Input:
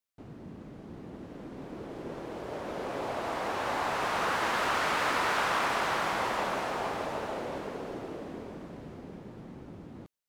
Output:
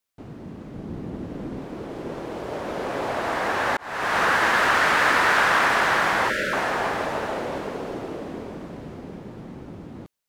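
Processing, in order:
0:00.74–0:01.59: low-shelf EQ 340 Hz +6.5 dB
0:06.30–0:06.53: time-frequency box erased 630–1,300 Hz
dynamic equaliser 1,700 Hz, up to +7 dB, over −47 dBFS, Q 2.6
0:03.77–0:04.18: fade in
level +7 dB

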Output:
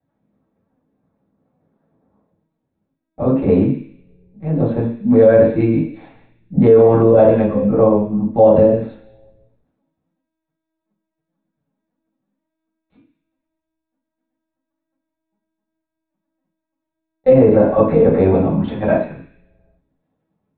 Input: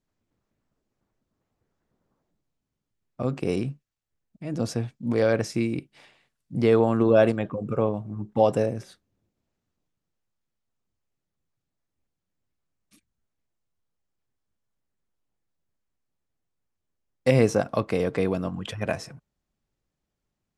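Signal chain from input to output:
linear-prediction vocoder at 8 kHz pitch kept
0:17.30–0:18.20: low-pass filter 3,100 Hz 6 dB per octave
convolution reverb RT60 0.50 s, pre-delay 3 ms, DRR −7 dB
boost into a limiter −3 dB
level −1 dB

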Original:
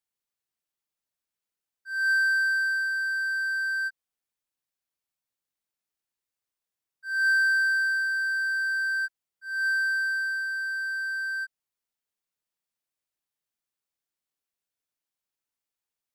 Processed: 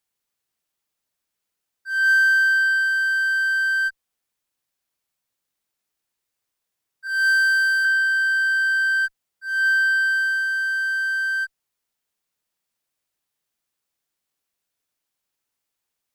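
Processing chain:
0:07.07–0:07.85: high-pass filter 1,500 Hz 12 dB per octave
in parallel at −10 dB: asymmetric clip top −35 dBFS, bottom −23.5 dBFS
on the sum: level +5.5 dB

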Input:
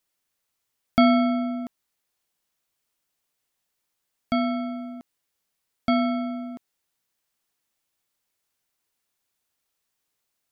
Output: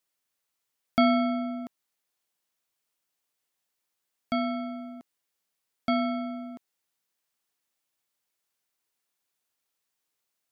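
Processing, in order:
low-shelf EQ 130 Hz −8.5 dB
level −3 dB

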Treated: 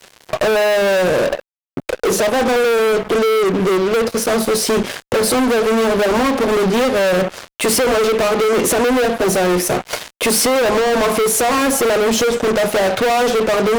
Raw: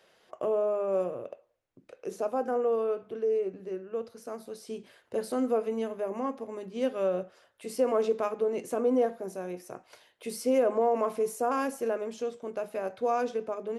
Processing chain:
downward compressor 6 to 1, threshold −34 dBFS, peak gain reduction 13 dB
fuzz pedal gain 50 dB, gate −58 dBFS

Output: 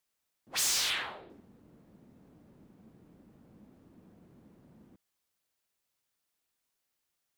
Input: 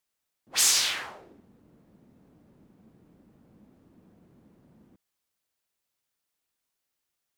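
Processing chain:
0:00.90–0:01.30: high shelf with overshoot 4,700 Hz −7.5 dB, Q 3
soft clipping −26.5 dBFS, distortion −7 dB

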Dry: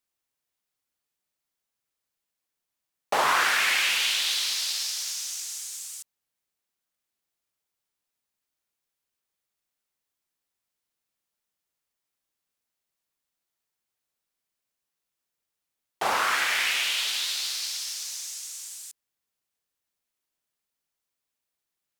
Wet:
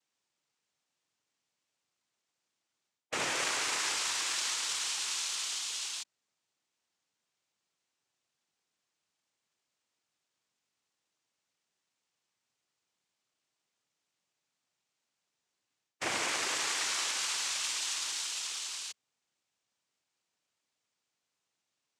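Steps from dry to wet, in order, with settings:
ceiling on every frequency bin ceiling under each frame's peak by 15 dB
reversed playback
downward compressor 8 to 1, threshold −34 dBFS, peak gain reduction 14.5 dB
reversed playback
cochlear-implant simulation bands 4
level +4.5 dB

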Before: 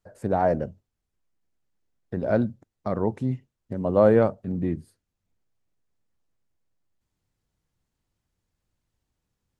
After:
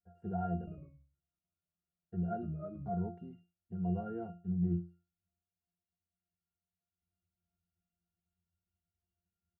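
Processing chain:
comb filter 4.3 ms, depth 44%
downward compressor 4 to 1, threshold −18 dBFS, peak gain reduction 6.5 dB
resonances in every octave F, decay 0.32 s
0:00.57–0:02.90: delay with pitch and tempo change per echo 102 ms, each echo −2 semitones, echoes 2, each echo −6 dB
level +2 dB

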